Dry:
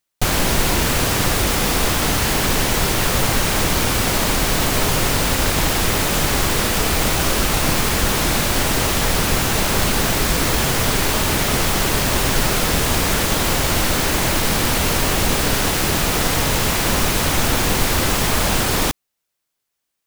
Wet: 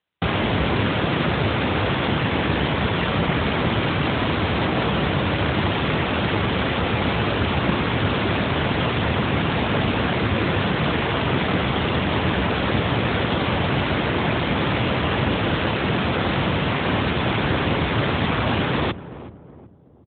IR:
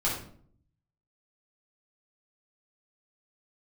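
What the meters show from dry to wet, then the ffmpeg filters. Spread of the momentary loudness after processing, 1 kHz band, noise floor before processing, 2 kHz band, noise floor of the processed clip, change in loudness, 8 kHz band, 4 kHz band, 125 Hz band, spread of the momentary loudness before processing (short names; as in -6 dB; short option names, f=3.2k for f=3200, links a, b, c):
1 LU, -2.0 dB, -78 dBFS, -2.5 dB, -38 dBFS, -4.0 dB, under -40 dB, -6.0 dB, 0.0 dB, 0 LU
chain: -filter_complex "[0:a]asplit=2[a][b];[b]adelay=374,lowpass=f=850:p=1,volume=-14dB,asplit=2[c][d];[d]adelay=374,lowpass=f=850:p=1,volume=0.45,asplit=2[e][f];[f]adelay=374,lowpass=f=850:p=1,volume=0.45,asplit=2[g][h];[h]adelay=374,lowpass=f=850:p=1,volume=0.45[i];[a][c][e][g][i]amix=inputs=5:normalize=0,afreqshift=44" -ar 8000 -c:a libopencore_amrnb -b:a 12200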